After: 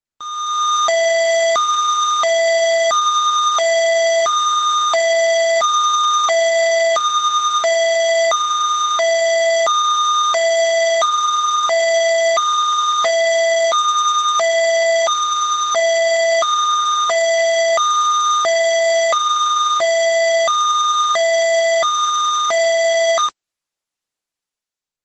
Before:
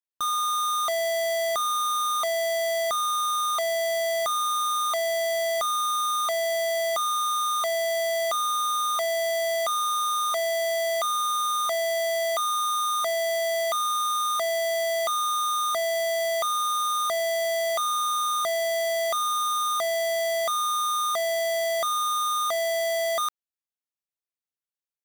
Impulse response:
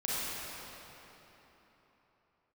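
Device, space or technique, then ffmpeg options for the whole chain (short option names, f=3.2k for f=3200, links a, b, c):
video call: -af "highpass=f=110:p=1,dynaudnorm=f=150:g=7:m=14dB,volume=-2.5dB" -ar 48000 -c:a libopus -b:a 12k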